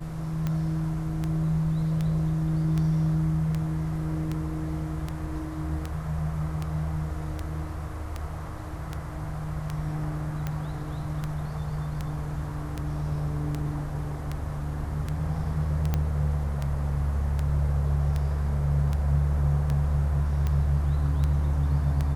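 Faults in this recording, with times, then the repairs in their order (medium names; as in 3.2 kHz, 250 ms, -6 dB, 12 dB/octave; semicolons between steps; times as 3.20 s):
tick 78 rpm -17 dBFS
15.94 s: pop -13 dBFS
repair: de-click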